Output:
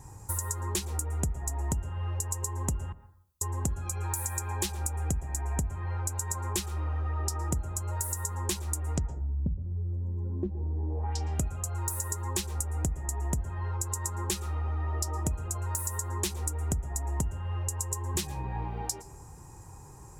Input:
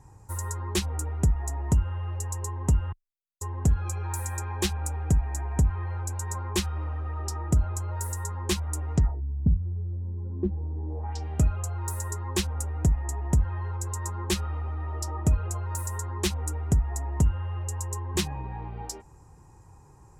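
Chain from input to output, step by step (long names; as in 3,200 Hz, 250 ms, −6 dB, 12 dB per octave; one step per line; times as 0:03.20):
high-shelf EQ 5,700 Hz +11 dB
downward compressor 6 to 1, threshold −33 dBFS, peak gain reduction 15 dB
dense smooth reverb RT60 0.65 s, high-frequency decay 0.3×, pre-delay 105 ms, DRR 14 dB
level +4 dB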